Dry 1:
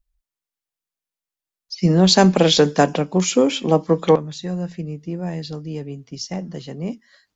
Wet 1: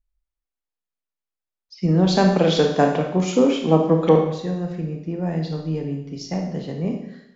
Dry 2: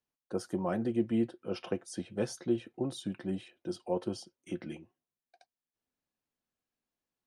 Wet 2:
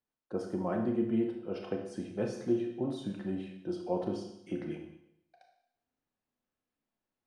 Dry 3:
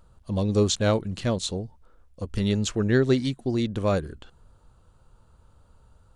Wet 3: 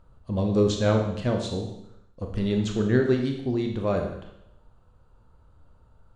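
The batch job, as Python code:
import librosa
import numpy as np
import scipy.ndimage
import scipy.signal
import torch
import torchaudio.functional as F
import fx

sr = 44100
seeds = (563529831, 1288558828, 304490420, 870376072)

y = fx.lowpass(x, sr, hz=2000.0, slope=6)
y = fx.rider(y, sr, range_db=3, speed_s=2.0)
y = fx.rev_schroeder(y, sr, rt60_s=0.78, comb_ms=25, drr_db=2.5)
y = y * librosa.db_to_amplitude(-1.5)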